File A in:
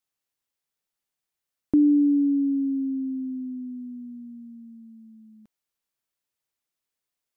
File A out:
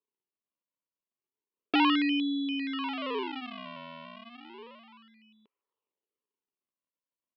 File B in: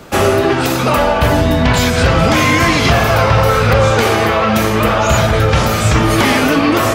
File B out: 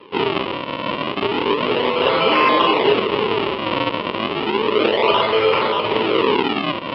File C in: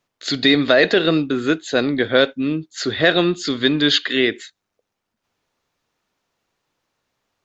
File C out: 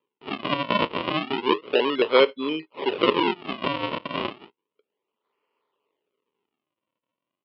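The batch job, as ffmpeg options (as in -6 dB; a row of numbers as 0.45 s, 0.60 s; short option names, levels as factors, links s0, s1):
-af "aresample=11025,acrusher=samples=15:mix=1:aa=0.000001:lfo=1:lforange=24:lforate=0.32,aresample=44100,highpass=420,equalizer=f=420:t=q:w=4:g=9,equalizer=f=720:t=q:w=4:g=-9,equalizer=f=1000:t=q:w=4:g=7,equalizer=f=1600:t=q:w=4:g=-10,equalizer=f=2900:t=q:w=4:g=8,lowpass=f=3300:w=0.5412,lowpass=f=3300:w=1.3066,volume=0.841"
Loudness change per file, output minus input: -5.5 LU, -6.0 LU, -6.5 LU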